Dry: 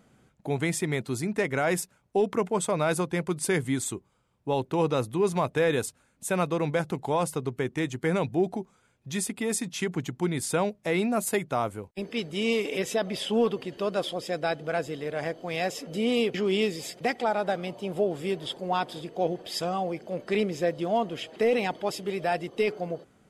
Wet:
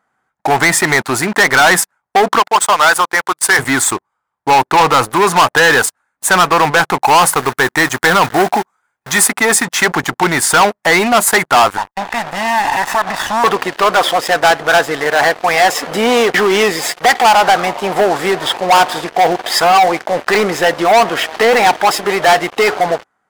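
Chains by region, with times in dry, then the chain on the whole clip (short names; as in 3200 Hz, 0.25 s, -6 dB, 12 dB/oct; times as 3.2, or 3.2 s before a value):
2.39–3.59 HPF 640 Hz 6 dB/oct + upward expander, over -47 dBFS
7.02–9.28 high shelf 7900 Hz +8 dB + short-mantissa float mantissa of 2-bit
11.77–13.44 minimum comb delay 1.1 ms + high shelf 3200 Hz -8.5 dB + compressor 4:1, threshold -36 dBFS
whole clip: band shelf 1200 Hz +14 dB; sample leveller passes 5; tone controls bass -9 dB, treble +2 dB; gain -1 dB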